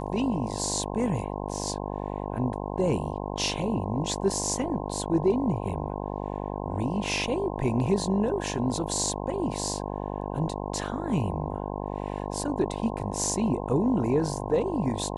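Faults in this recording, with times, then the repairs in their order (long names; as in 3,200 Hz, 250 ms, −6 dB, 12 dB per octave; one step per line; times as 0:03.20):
mains buzz 50 Hz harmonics 21 −33 dBFS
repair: hum removal 50 Hz, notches 21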